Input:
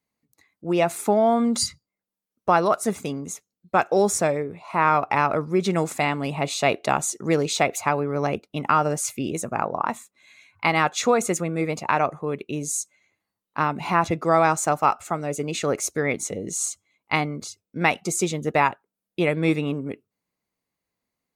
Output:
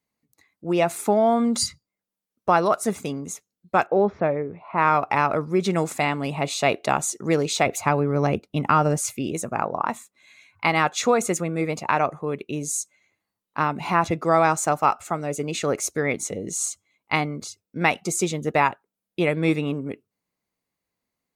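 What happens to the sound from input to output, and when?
3.86–4.78 Gaussian blur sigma 3.4 samples
7.66–9.14 low shelf 250 Hz +8 dB

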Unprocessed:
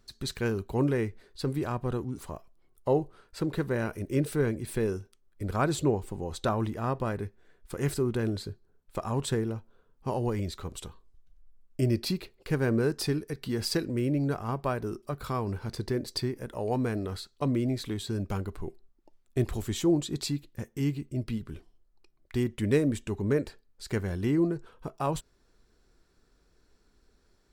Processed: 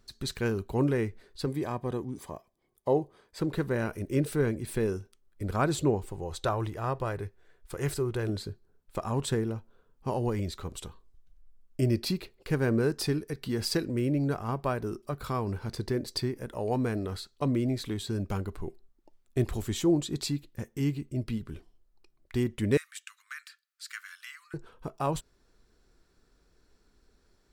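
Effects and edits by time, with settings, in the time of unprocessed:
1.46–3.39 notch comb 1400 Hz
6.06–8.29 bell 230 Hz -11.5 dB 0.53 oct
22.77–24.54 steep high-pass 1200 Hz 72 dB/oct

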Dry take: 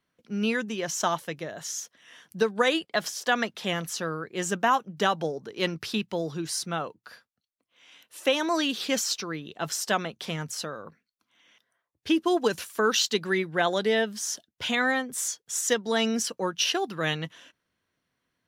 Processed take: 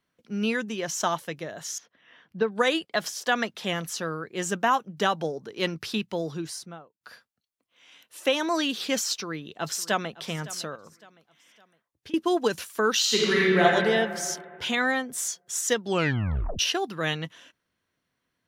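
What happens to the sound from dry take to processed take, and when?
1.78–2.52 air absorption 310 m
6.3–7.01 studio fade out
9.1–10.19 echo throw 0.56 s, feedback 40%, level -18 dB
10.75–12.14 compressor, threshold -43 dBFS
13–13.63 reverb throw, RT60 2.1 s, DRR -5.5 dB
15.8 tape stop 0.79 s

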